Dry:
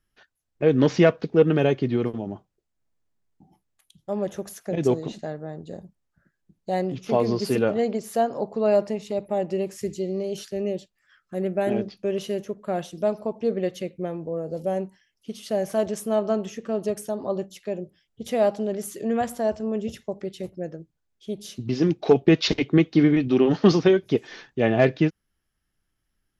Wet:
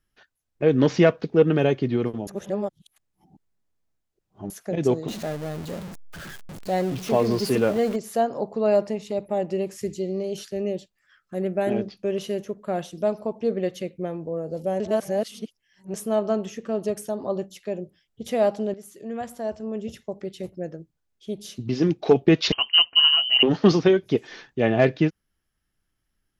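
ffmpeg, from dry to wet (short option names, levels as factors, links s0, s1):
-filter_complex "[0:a]asettb=1/sr,asplit=3[s0][s1][s2];[s0]atrim=end=5.084[s3];[s1]atrim=start=5.08:end=7.96,asetpts=PTS-STARTPTS,afade=t=in:d=0.004:c=qsin,afade=t=out:st=2.876:d=0.004:c=qsin,aeval=exprs='val(0)+0.5*0.0237*sgn(val(0))':c=same[s4];[s2]atrim=start=7.956[s5];[s3][s4]acrossfade=d=0.004:c1=hsin:c2=qsin[s6];[s6][s5]acrossfade=d=0.004:c1=qsin:c2=hsin,asettb=1/sr,asplit=3[s7][s8][s9];[s7]atrim=end=22.524[s10];[s8]atrim=start=22.52:end=23.43,asetpts=PTS-STARTPTS,afade=t=in:d=0.004:c=qsin,afade=t=out:st=0.906:d=0.004:c=qsin,lowpass=f=2700:t=q:w=0.5098,lowpass=f=2700:t=q:w=0.6013,lowpass=f=2700:t=q:w=0.9,lowpass=f=2700:t=q:w=2.563,afreqshift=-3200[s11];[s9]atrim=start=23.426[s12];[s10][s11]acrossfade=d=0.004:c1=hsin:c2=qsin[s13];[s13][s12]acrossfade=d=0.004:c1=qsin:c2=hsin,asplit=6[s14][s15][s16][s17][s18][s19];[s14]atrim=end=2.272[s20];[s15]atrim=start=2.268:end=4.502,asetpts=PTS-STARTPTS,areverse[s21];[s16]atrim=start=4.498:end=14.802[s22];[s17]atrim=start=14.798:end=15.942,asetpts=PTS-STARTPTS,areverse[s23];[s18]atrim=start=15.938:end=18.74,asetpts=PTS-STARTPTS,afade=t=out:st=2.798:d=0.004:c=hsin:silence=0.237137[s24];[s19]atrim=start=18.74,asetpts=PTS-STARTPTS,afade=t=in:d=1.78:silence=0.237137[s25];[s20][s21]acrossfade=d=0.004:c1=hsin:c2=hsin[s26];[s26][s22]acrossfade=d=0.004:c1=hsin:c2=hsin[s27];[s27][s23]acrossfade=d=0.004:c1=hsin:c2=hsin[s28];[s24][s25]concat=n=2:v=0:a=1[s29];[s28][s29]acrossfade=d=0.004:c1=hsin:c2=hsin"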